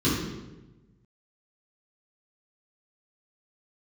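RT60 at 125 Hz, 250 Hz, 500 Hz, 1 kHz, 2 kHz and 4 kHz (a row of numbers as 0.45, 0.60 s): 1.6, 1.3, 1.2, 0.95, 0.85, 0.75 s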